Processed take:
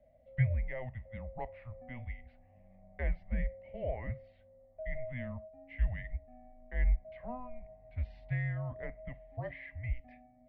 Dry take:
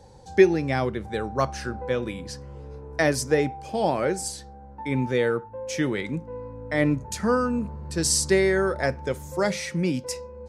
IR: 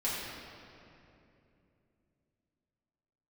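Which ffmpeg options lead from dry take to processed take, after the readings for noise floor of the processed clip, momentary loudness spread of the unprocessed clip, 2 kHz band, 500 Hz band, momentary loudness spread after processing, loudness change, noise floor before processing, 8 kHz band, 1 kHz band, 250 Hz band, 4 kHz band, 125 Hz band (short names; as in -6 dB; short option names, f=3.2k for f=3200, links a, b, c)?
-63 dBFS, 15 LU, -15.5 dB, -20.5 dB, 16 LU, -14.0 dB, -44 dBFS, under -40 dB, -20.0 dB, -21.0 dB, -33.0 dB, -5.5 dB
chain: -filter_complex "[0:a]asplit=3[a][b][c];[a]bandpass=f=300:t=q:w=8,volume=0dB[d];[b]bandpass=f=870:t=q:w=8,volume=-6dB[e];[c]bandpass=f=2.24k:t=q:w=8,volume=-9dB[f];[d][e][f]amix=inputs=3:normalize=0,highpass=f=290:t=q:w=0.5412,highpass=f=290:t=q:w=1.307,lowpass=f=3.2k:t=q:w=0.5176,lowpass=f=3.2k:t=q:w=0.7071,lowpass=f=3.2k:t=q:w=1.932,afreqshift=-250,volume=1dB"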